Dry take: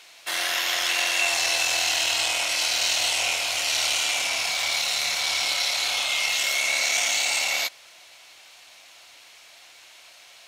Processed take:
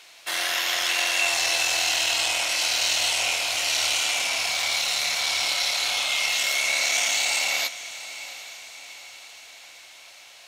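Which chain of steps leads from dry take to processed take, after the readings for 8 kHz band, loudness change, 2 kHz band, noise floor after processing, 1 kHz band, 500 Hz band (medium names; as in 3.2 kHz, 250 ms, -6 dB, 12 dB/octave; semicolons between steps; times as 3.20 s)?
0.0 dB, 0.0 dB, 0.0 dB, -48 dBFS, 0.0 dB, 0.0 dB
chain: echo that smears into a reverb 777 ms, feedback 51%, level -14.5 dB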